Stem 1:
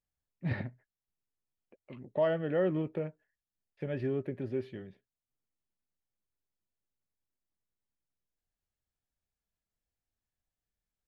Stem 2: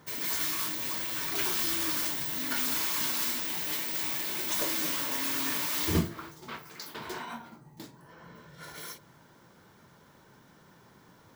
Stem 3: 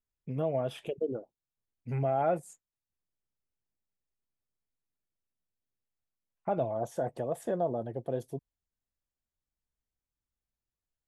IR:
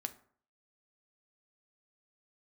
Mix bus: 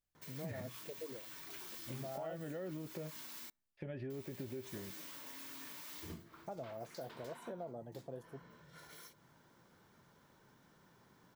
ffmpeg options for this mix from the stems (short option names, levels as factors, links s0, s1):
-filter_complex "[0:a]bandreject=f=450:w=12,volume=0.944[s0];[1:a]acompressor=threshold=0.00447:ratio=2,adelay=150,volume=0.335,asplit=3[s1][s2][s3];[s1]atrim=end=3.5,asetpts=PTS-STARTPTS,afade=t=out:st=3.496:d=0.004:c=hsin[s4];[s2]atrim=start=3.5:end=4.1,asetpts=PTS-STARTPTS,volume=0[s5];[s3]atrim=start=4.1,asetpts=PTS-STARTPTS,afade=t=in:d=0.004:c=hsin[s6];[s4][s5][s6]concat=n=3:v=0:a=1,asplit=2[s7][s8];[s8]volume=0.126[s9];[2:a]volume=0.237[s10];[s0][s7]amix=inputs=2:normalize=0,alimiter=level_in=2.24:limit=0.0631:level=0:latency=1:release=177,volume=0.447,volume=1[s11];[3:a]atrim=start_sample=2205[s12];[s9][s12]afir=irnorm=-1:irlink=0[s13];[s10][s11][s13]amix=inputs=3:normalize=0,acompressor=threshold=0.00891:ratio=4"